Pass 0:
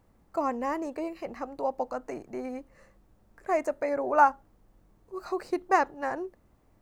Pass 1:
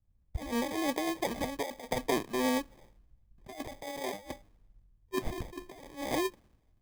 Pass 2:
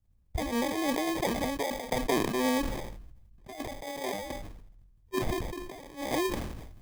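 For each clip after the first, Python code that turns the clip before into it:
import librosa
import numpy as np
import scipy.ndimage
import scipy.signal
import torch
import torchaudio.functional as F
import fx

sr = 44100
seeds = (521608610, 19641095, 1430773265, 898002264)

y1 = fx.over_compress(x, sr, threshold_db=-35.0, ratio=-1.0)
y1 = fx.sample_hold(y1, sr, seeds[0], rate_hz=1400.0, jitter_pct=0)
y1 = fx.band_widen(y1, sr, depth_pct=100)
y2 = fx.sustainer(y1, sr, db_per_s=42.0)
y2 = y2 * 10.0 ** (1.5 / 20.0)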